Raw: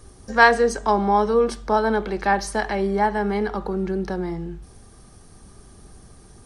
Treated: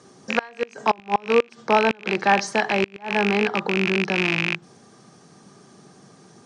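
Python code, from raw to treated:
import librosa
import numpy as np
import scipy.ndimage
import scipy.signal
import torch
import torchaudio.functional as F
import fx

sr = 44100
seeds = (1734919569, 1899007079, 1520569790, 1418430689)

p1 = fx.rattle_buzz(x, sr, strikes_db=-31.0, level_db=-10.0)
p2 = scipy.signal.sosfilt(scipy.signal.ellip(3, 1.0, 40, [150.0, 7200.0], 'bandpass', fs=sr, output='sos'), p1)
p3 = fx.gate_flip(p2, sr, shuts_db=-8.0, range_db=-30)
p4 = 10.0 ** (-15.5 / 20.0) * np.tanh(p3 / 10.0 ** (-15.5 / 20.0))
y = p3 + (p4 * 10.0 ** (-9.5 / 20.0))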